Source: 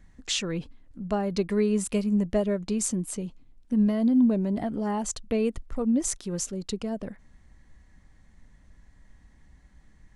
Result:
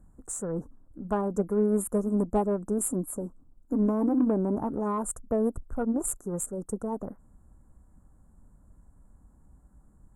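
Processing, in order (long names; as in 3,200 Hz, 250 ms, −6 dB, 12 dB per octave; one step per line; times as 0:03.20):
formants moved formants +3 semitones
elliptic band-stop filter 1,400–7,500 Hz, stop band 40 dB
harmonic generator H 7 −37 dB, 8 −37 dB, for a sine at −12.5 dBFS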